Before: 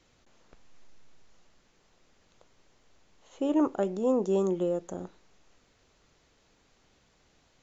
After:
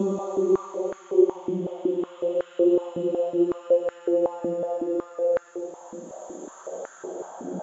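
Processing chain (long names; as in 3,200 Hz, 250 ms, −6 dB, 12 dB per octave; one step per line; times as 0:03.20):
tape wow and flutter 15 cents
extreme stretch with random phases 15×, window 0.25 s, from 0:04.45
high-pass on a step sequencer 5.4 Hz 230–1,500 Hz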